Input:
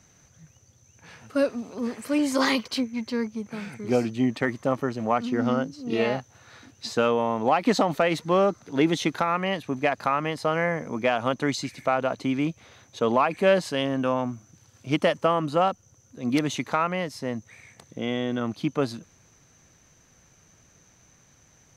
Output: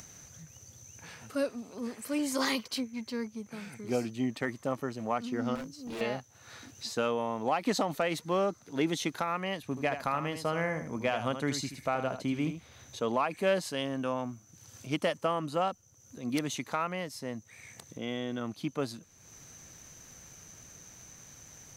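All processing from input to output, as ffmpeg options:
-filter_complex "[0:a]asettb=1/sr,asplit=3[a][b][c];[a]atrim=end=5.554[d];[b]atrim=start=5.55:end=6.01,asetpts=PTS-STARTPTS,afade=t=in:d=0.004:c=qsin,afade=t=out:st=0.456:d=0.004:c=qsin,highshelf=f=8.2k:g=6.5,volume=28.5dB,asoftclip=hard,volume=-28.5dB[e];[c]atrim=start=6.006[f];[d][e]acrossfade=d=0.004:c1=hsin:c2=qsin[g];[g][f]acrossfade=d=0.004:c1=qsin:c2=hsin,asettb=1/sr,asplit=3[h][i][j];[h]atrim=end=9.634[k];[i]atrim=start=9.63:end=13.01,asetpts=PTS-STARTPTS,afade=t=in:d=0.004:c=qsin,afade=t=out:st=3.376:d=0.004:c=qsin,lowshelf=f=120:g=10.5,aecho=1:1:79:0.335,atrim=end_sample=149058[l];[j]atrim=start=13.006[m];[k][l]acrossfade=d=0.004:c1=hsin:c2=qsin[n];[n][m]acrossfade=d=0.004:c1=qsin:c2=hsin,highshelf=f=6.6k:g=11.5,acompressor=mode=upward:threshold=-32dB:ratio=2.5,volume=-8dB"

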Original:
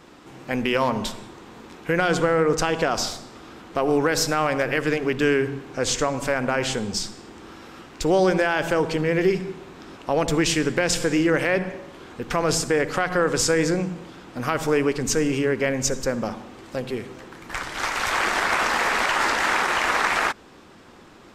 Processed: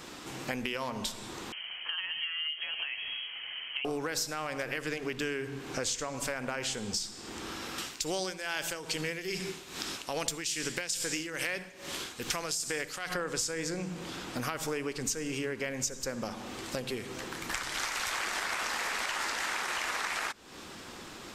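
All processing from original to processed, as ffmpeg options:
-filter_complex "[0:a]asettb=1/sr,asplit=3[a][b][c];[a]atrim=end=1.524[d];[b]atrim=start=1.52:end=3.85,asetpts=PTS-STARTPTS,afade=t=in:d=0.004:c=qsin,afade=t=out:st=2.326:d=0.004:c=qsin,acompressor=threshold=-31dB:ratio=2.5:attack=3.2:release=140:knee=1:detection=peak,flanger=delay=6.4:depth=4.9:regen=61:speed=1.1:shape=sinusoidal,lowpass=f=2.8k:t=q:w=0.5098,lowpass=f=2.8k:t=q:w=0.6013,lowpass=f=2.8k:t=q:w=0.9,lowpass=f=2.8k:t=q:w=2.563,afreqshift=-3300[e];[c]atrim=start=3.846[f];[d][e]acrossfade=d=0.004:c1=hsin:c2=qsin[g];[g][f]acrossfade=d=0.004:c1=qsin:c2=hsin,asettb=1/sr,asplit=3[h][i][j];[h]atrim=end=7.784[k];[i]atrim=start=7.78:end=13.14,asetpts=PTS-STARTPTS,afade=t=in:d=0.004:c=qsin,afade=t=out:st=5.356:d=0.004:c=qsin,highshelf=f=2.2k:g=11.5,tremolo=f=2.4:d=0.77[l];[j]atrim=start=13.136[m];[k][l]acrossfade=d=0.004:c1=hsin:c2=qsin[n];[n][m]acrossfade=d=0.004:c1=qsin:c2=hsin,highshelf=f=2.5k:g=11.5,acompressor=threshold=-33dB:ratio=5"

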